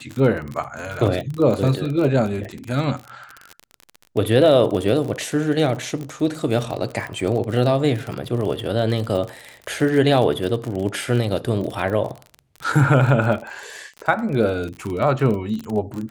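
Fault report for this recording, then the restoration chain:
crackle 38/s -25 dBFS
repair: de-click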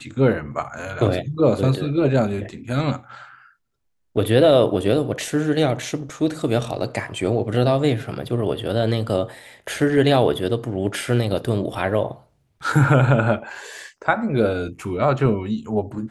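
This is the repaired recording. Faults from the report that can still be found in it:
none

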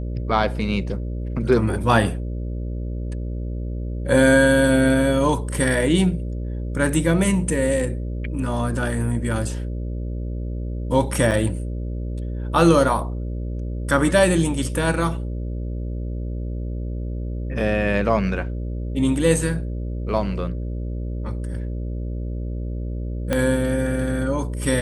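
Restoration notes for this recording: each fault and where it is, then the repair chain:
buzz 60 Hz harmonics 10 -27 dBFS
11.31–11.32 gap 5.8 ms
23.33 pop -8 dBFS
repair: de-click; de-hum 60 Hz, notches 10; interpolate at 11.31, 5.8 ms

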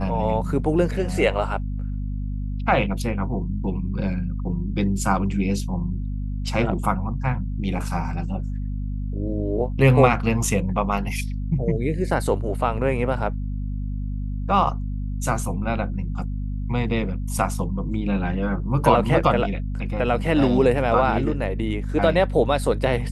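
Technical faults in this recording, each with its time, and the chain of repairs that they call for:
hum 50 Hz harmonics 5 -27 dBFS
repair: de-hum 50 Hz, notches 5

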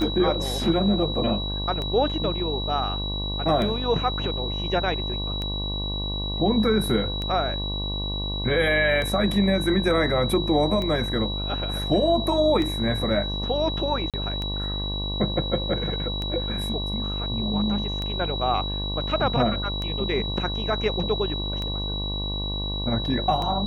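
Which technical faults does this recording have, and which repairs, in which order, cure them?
buzz 50 Hz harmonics 23 -30 dBFS
tick 33 1/3 rpm
tone 3900 Hz -30 dBFS
14.1–14.14 gap 37 ms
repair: de-click; de-hum 50 Hz, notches 23; notch 3900 Hz, Q 30; interpolate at 14.1, 37 ms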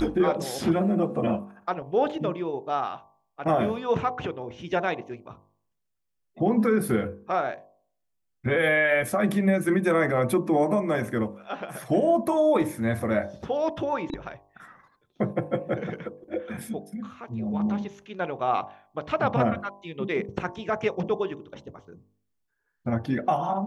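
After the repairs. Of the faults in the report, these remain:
none

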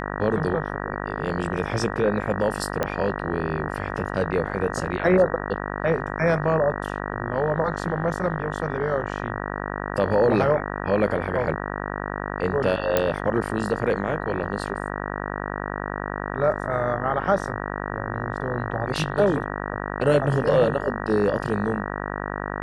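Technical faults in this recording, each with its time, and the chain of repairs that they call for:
buzz 50 Hz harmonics 38 -30 dBFS
2.83 pop -10 dBFS
12.97 pop -6 dBFS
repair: de-click; de-hum 50 Hz, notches 38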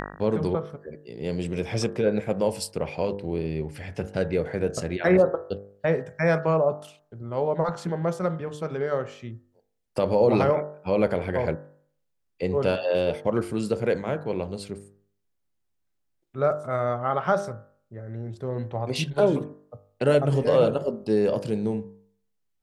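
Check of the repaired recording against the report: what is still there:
none

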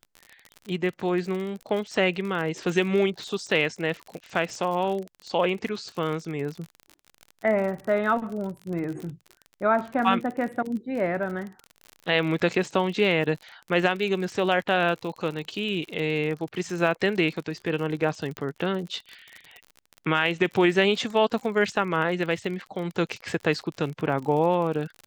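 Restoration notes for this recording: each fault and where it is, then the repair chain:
crackle 47/s -32 dBFS
18.37 pop -17 dBFS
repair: de-click

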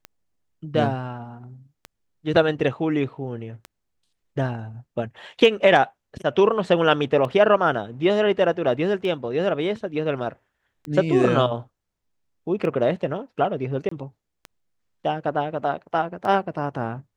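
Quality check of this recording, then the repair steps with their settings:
tick 33 1/3 rpm -20 dBFS
13.89–13.91 gap 24 ms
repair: de-click; interpolate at 13.89, 24 ms

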